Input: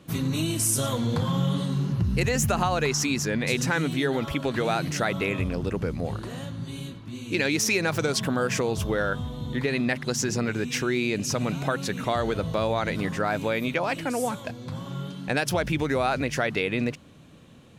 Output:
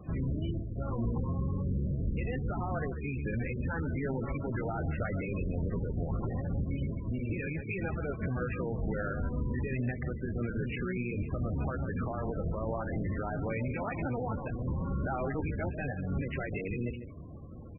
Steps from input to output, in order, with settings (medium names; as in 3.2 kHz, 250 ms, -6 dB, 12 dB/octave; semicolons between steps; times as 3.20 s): octave divider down 1 oct, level +3 dB; 12.45–13.29 s: treble shelf 4.8 kHz -9.5 dB; 15.03–16.19 s: reverse; compression 12:1, threshold -29 dBFS, peak gain reduction 13.5 dB; peak limiter -26 dBFS, peak gain reduction 7.5 dB; distance through air 96 m; echo from a far wall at 25 m, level -10 dB; trim +1.5 dB; MP3 8 kbps 24 kHz